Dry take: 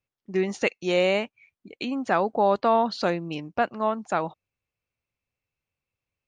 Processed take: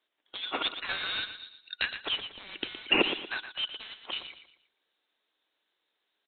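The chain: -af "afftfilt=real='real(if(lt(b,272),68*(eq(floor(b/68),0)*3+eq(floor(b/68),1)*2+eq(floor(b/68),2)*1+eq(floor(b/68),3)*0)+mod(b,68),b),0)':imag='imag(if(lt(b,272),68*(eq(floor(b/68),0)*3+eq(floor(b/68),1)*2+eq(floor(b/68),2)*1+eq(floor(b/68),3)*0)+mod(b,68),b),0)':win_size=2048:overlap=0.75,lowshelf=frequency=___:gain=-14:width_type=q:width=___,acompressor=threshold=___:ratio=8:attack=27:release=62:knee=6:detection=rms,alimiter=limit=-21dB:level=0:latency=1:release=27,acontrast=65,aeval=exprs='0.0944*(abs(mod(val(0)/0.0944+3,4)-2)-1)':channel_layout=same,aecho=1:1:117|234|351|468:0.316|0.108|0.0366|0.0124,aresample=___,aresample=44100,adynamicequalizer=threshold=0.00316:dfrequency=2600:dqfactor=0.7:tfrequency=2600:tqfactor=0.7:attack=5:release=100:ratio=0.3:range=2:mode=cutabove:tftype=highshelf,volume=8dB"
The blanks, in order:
200, 1.5, -30dB, 8000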